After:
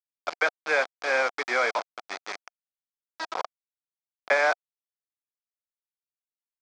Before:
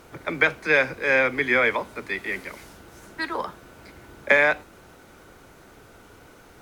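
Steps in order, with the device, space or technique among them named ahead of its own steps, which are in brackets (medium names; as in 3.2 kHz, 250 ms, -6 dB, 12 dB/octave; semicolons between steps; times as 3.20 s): hand-held game console (bit crusher 4-bit; cabinet simulation 490–5100 Hz, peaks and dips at 720 Hz +7 dB, 1.3 kHz +4 dB, 1.9 kHz -6 dB, 2.8 kHz -8 dB, 3.9 kHz -5 dB); trim -3 dB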